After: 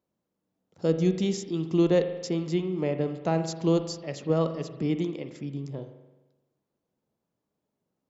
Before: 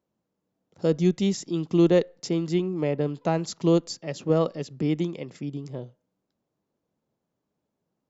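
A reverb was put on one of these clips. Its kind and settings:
spring reverb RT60 1.1 s, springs 43 ms, chirp 40 ms, DRR 8.5 dB
level −2.5 dB

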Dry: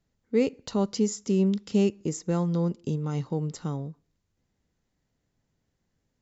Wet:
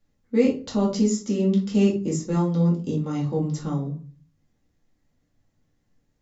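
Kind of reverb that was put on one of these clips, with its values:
rectangular room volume 180 cubic metres, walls furnished, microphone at 2.3 metres
level −1.5 dB

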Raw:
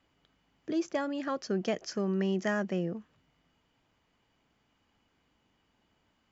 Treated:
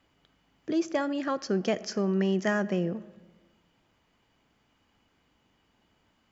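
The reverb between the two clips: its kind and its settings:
comb and all-pass reverb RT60 1.4 s, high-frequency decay 0.5×, pre-delay 10 ms, DRR 18 dB
level +3.5 dB

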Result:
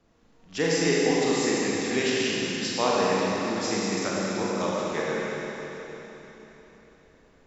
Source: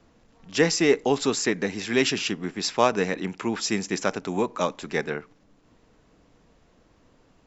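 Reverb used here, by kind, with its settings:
four-comb reverb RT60 3.9 s, combs from 32 ms, DRR −6 dB
level −7.5 dB

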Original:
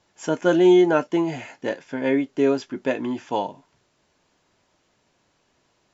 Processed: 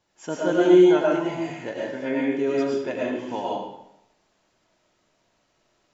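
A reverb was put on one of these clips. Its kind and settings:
comb and all-pass reverb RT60 0.79 s, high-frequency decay 0.9×, pre-delay 65 ms, DRR −4.5 dB
level −7 dB

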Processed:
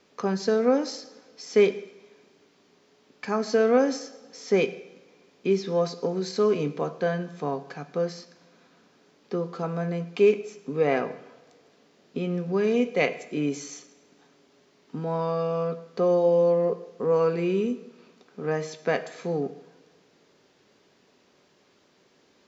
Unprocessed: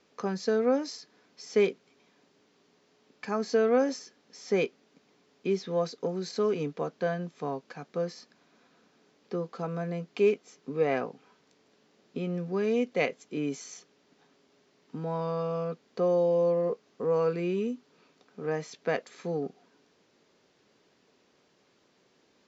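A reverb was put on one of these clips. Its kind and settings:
coupled-rooms reverb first 0.81 s, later 2.5 s, DRR 10.5 dB
level +4 dB

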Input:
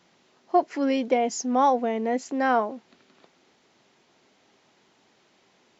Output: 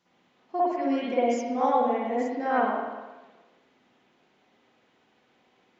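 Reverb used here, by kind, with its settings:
spring reverb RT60 1.2 s, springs 51/55 ms, chirp 65 ms, DRR −9.5 dB
level −12 dB

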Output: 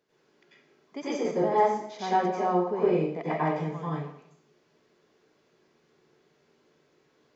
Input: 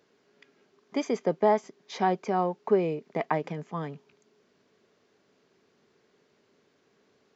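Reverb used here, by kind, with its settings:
dense smooth reverb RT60 0.71 s, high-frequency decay 0.8×, pre-delay 80 ms, DRR −10 dB
level −9.5 dB

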